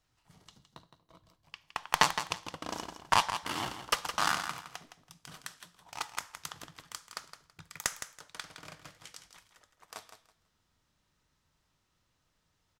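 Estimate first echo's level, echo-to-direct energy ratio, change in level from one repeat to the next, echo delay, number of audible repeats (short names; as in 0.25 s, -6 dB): -10.0 dB, -10.0 dB, -13.5 dB, 0.164 s, 2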